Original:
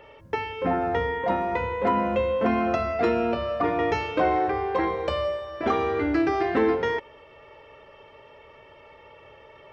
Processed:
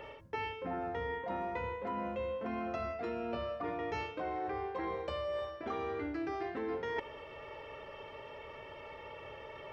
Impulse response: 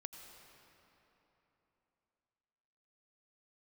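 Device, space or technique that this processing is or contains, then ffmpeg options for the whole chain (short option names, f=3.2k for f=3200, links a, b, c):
compression on the reversed sound: -af "areverse,acompressor=threshold=-36dB:ratio=16,areverse,volume=1.5dB"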